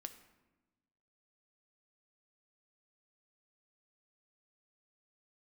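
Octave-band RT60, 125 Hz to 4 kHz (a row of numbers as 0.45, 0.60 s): 1.5, 1.5, 1.2, 1.1, 0.95, 0.70 s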